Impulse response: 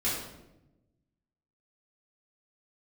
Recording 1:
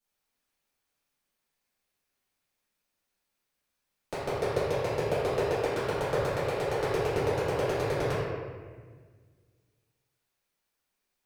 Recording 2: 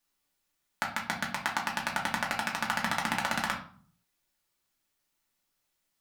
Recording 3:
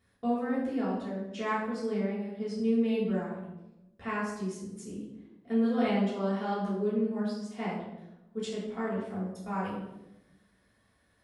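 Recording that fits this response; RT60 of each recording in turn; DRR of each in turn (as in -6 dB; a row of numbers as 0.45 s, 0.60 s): 3; 1.6 s, 0.50 s, 0.95 s; -14.5 dB, -2.5 dB, -10.0 dB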